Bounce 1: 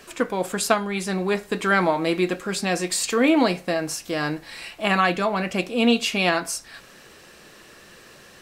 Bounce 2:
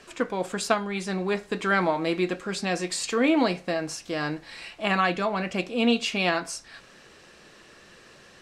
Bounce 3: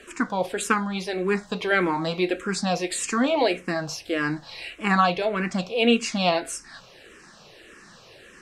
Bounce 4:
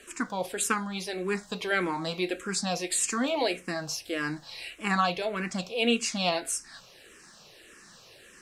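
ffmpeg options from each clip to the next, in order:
ffmpeg -i in.wav -af "lowpass=7600,volume=-3.5dB" out.wav
ffmpeg -i in.wav -filter_complex "[0:a]asplit=2[link_01][link_02];[link_02]afreqshift=-1.7[link_03];[link_01][link_03]amix=inputs=2:normalize=1,volume=5.5dB" out.wav
ffmpeg -i in.wav -af "crystalizer=i=2:c=0,volume=-6.5dB" out.wav

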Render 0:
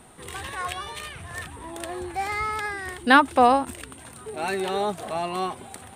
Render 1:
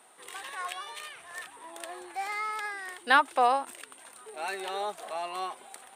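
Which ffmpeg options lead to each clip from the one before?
ffmpeg -i in.wav -af "highpass=550,volume=-5dB" out.wav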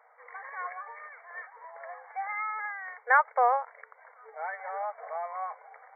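ffmpeg -i in.wav -af "afftfilt=real='re*between(b*sr/4096,440,2300)':imag='im*between(b*sr/4096,440,2300)':win_size=4096:overlap=0.75" out.wav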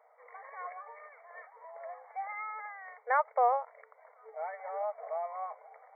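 ffmpeg -i in.wav -af "equalizer=frequency=400:width_type=o:width=0.33:gain=8,equalizer=frequency=630:width_type=o:width=0.33:gain=8,equalizer=frequency=1600:width_type=o:width=0.33:gain=-9,volume=-5dB" out.wav

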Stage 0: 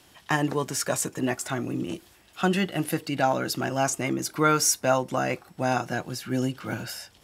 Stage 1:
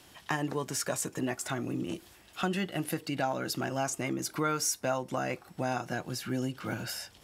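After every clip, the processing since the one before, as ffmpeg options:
ffmpeg -i in.wav -af "acompressor=threshold=-33dB:ratio=2" out.wav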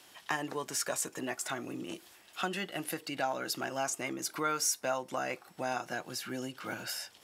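ffmpeg -i in.wav -af "highpass=frequency=510:poles=1" out.wav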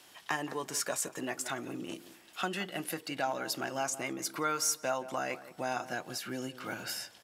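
ffmpeg -i in.wav -filter_complex "[0:a]asplit=2[link_01][link_02];[link_02]adelay=172,lowpass=frequency=1400:poles=1,volume=-13.5dB,asplit=2[link_03][link_04];[link_04]adelay=172,lowpass=frequency=1400:poles=1,volume=0.25,asplit=2[link_05][link_06];[link_06]adelay=172,lowpass=frequency=1400:poles=1,volume=0.25[link_07];[link_01][link_03][link_05][link_07]amix=inputs=4:normalize=0" out.wav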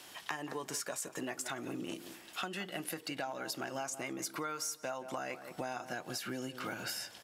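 ffmpeg -i in.wav -af "acompressor=threshold=-41dB:ratio=6,volume=4.5dB" out.wav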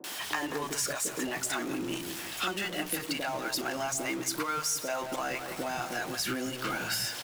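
ffmpeg -i in.wav -filter_complex "[0:a]aeval=exprs='val(0)+0.5*0.00891*sgn(val(0))':channel_layout=same,acrossover=split=170|600[link_01][link_02][link_03];[link_03]adelay=40[link_04];[link_01]adelay=190[link_05];[link_05][link_02][link_04]amix=inputs=3:normalize=0,volume=5.5dB" out.wav

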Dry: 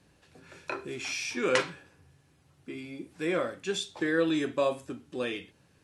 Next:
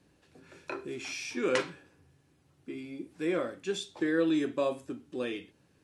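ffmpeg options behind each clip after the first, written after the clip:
ffmpeg -i in.wav -af "equalizer=frequency=310:width_type=o:width=1.2:gain=5.5,volume=-4.5dB" out.wav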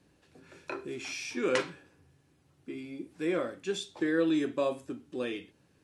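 ffmpeg -i in.wav -af anull out.wav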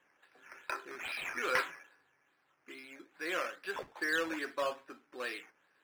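ffmpeg -i in.wav -filter_complex "[0:a]bandpass=frequency=1700:width_type=q:width=1.4:csg=0,acrusher=samples=9:mix=1:aa=0.000001:lfo=1:lforange=5.4:lforate=2.4,asplit=2[link_01][link_02];[link_02]highpass=frequency=720:poles=1,volume=11dB,asoftclip=type=tanh:threshold=-17.5dB[link_03];[link_01][link_03]amix=inputs=2:normalize=0,lowpass=frequency=1600:poles=1,volume=-6dB,volume=3.5dB" out.wav

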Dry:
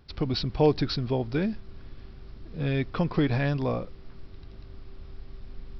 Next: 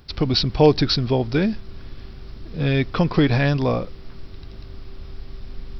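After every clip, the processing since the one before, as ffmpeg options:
ffmpeg -i in.wav -af "highshelf=frequency=4600:gain=9,volume=7dB" out.wav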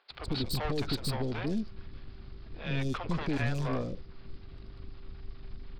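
ffmpeg -i in.wav -filter_complex "[0:a]aresample=11025,aresample=44100,aeval=exprs='(tanh(12.6*val(0)+0.65)-tanh(0.65))/12.6':channel_layout=same,acrossover=split=520|4300[link_01][link_02][link_03];[link_01]adelay=100[link_04];[link_03]adelay=150[link_05];[link_04][link_02][link_05]amix=inputs=3:normalize=0,volume=-5dB" out.wav

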